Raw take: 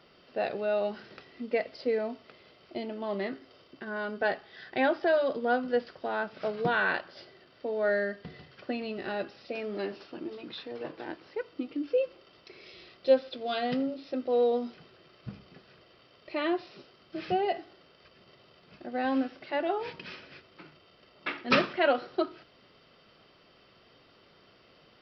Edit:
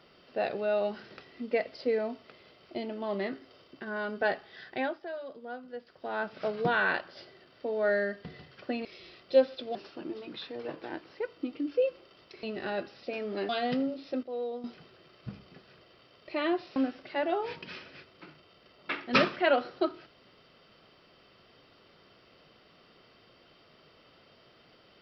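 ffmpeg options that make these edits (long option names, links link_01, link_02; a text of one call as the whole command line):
ffmpeg -i in.wav -filter_complex "[0:a]asplit=10[link_01][link_02][link_03][link_04][link_05][link_06][link_07][link_08][link_09][link_10];[link_01]atrim=end=5,asetpts=PTS-STARTPTS,afade=type=out:start_time=4.59:duration=0.41:silence=0.199526[link_11];[link_02]atrim=start=5:end=5.85,asetpts=PTS-STARTPTS,volume=-14dB[link_12];[link_03]atrim=start=5.85:end=8.852,asetpts=PTS-STARTPTS,afade=type=in:duration=0.41:silence=0.199526[link_13];[link_04]atrim=start=12.588:end=13.492[link_14];[link_05]atrim=start=9.908:end=12.592[link_15];[link_06]atrim=start=8.848:end=9.912[link_16];[link_07]atrim=start=13.488:end=14.232[link_17];[link_08]atrim=start=14.228:end=14.642,asetpts=PTS-STARTPTS,volume=-10dB[link_18];[link_09]atrim=start=14.638:end=16.762[link_19];[link_10]atrim=start=19.128[link_20];[link_11][link_12][link_13]concat=n=3:v=0:a=1[link_21];[link_21][link_14]acrossfade=duration=0.004:curve1=hsin:curve2=hsin[link_22];[link_22][link_15]acrossfade=duration=0.004:curve1=hsin:curve2=hsin[link_23];[link_23][link_16]acrossfade=duration=0.004:curve1=hsin:curve2=hsin[link_24];[link_24][link_17]acrossfade=duration=0.004:curve1=hsin:curve2=hsin[link_25];[link_25][link_18]acrossfade=duration=0.004:curve1=hsin:curve2=hsin[link_26];[link_26][link_19]acrossfade=duration=0.004:curve1=hsin:curve2=hsin[link_27];[link_27][link_20]acrossfade=duration=0.004:curve1=hsin:curve2=hsin" out.wav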